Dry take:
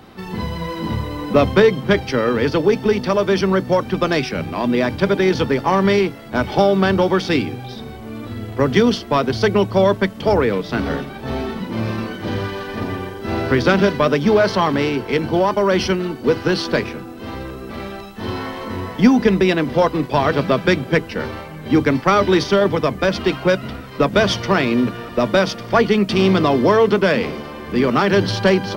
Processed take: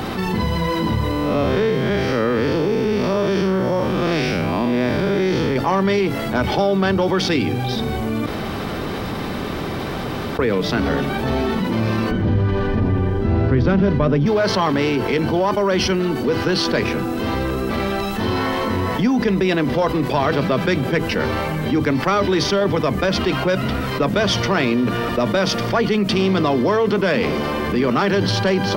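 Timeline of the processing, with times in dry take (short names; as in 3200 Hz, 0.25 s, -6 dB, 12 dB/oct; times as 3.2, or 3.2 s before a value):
1.11–5.56 time blur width 0.166 s
8.26–10.39 room tone
12.11–14.26 RIAA curve playback
whole clip: fast leveller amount 70%; gain -9 dB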